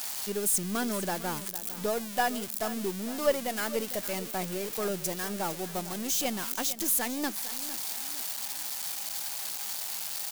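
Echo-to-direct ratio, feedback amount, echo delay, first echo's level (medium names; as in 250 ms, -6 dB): -13.5 dB, 41%, 455 ms, -14.5 dB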